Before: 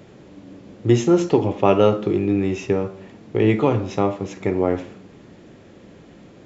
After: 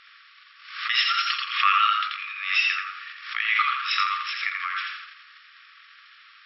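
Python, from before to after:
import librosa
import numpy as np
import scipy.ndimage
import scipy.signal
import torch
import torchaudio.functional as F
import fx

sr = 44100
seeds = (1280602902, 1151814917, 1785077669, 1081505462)

y = fx.transient(x, sr, attack_db=6, sustain_db=10)
y = fx.brickwall_bandpass(y, sr, low_hz=1100.0, high_hz=5600.0)
y = fx.echo_feedback(y, sr, ms=85, feedback_pct=28, wet_db=-4.0)
y = fx.pre_swell(y, sr, db_per_s=89.0)
y = F.gain(torch.from_numpy(y), 4.5).numpy()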